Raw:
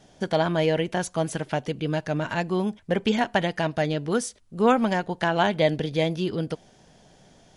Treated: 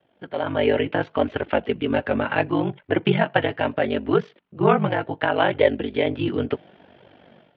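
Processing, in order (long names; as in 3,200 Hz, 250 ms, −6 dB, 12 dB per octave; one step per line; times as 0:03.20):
single-sideband voice off tune −50 Hz 210–3,200 Hz
ring modulation 24 Hz
flanger 0.71 Hz, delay 1.8 ms, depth 7.6 ms, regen −39%
automatic gain control gain up to 15.5 dB
level −2 dB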